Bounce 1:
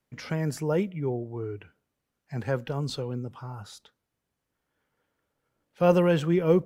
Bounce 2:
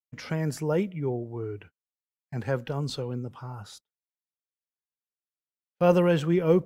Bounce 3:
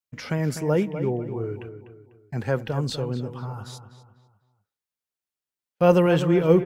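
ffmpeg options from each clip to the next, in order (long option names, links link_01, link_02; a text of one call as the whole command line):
ffmpeg -i in.wav -af "agate=range=-36dB:threshold=-47dB:ratio=16:detection=peak" out.wav
ffmpeg -i in.wav -filter_complex "[0:a]asplit=2[link_01][link_02];[link_02]adelay=248,lowpass=frequency=2700:poles=1,volume=-10dB,asplit=2[link_03][link_04];[link_04]adelay=248,lowpass=frequency=2700:poles=1,volume=0.4,asplit=2[link_05][link_06];[link_06]adelay=248,lowpass=frequency=2700:poles=1,volume=0.4,asplit=2[link_07][link_08];[link_08]adelay=248,lowpass=frequency=2700:poles=1,volume=0.4[link_09];[link_01][link_03][link_05][link_07][link_09]amix=inputs=5:normalize=0,volume=3.5dB" out.wav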